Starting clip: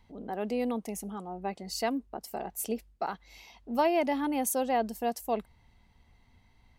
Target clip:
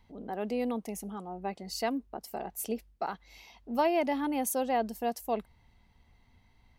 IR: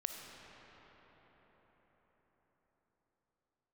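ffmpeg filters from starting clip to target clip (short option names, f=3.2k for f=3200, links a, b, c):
-af "equalizer=f=8k:t=o:w=0.59:g=-2.5,volume=-1dB"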